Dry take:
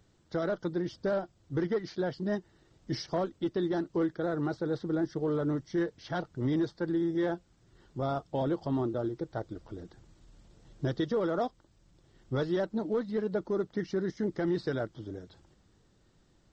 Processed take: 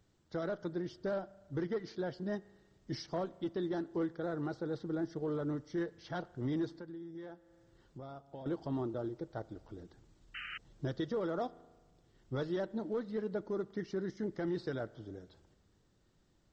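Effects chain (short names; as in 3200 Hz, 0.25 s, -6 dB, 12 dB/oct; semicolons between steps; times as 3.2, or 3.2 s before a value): spring tank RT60 1.4 s, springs 36 ms, chirp 60 ms, DRR 19.5 dB; 6.72–8.46 compressor 3:1, threshold -42 dBFS, peak gain reduction 12.5 dB; 10.34–10.58 painted sound noise 1200–3100 Hz -38 dBFS; gain -6 dB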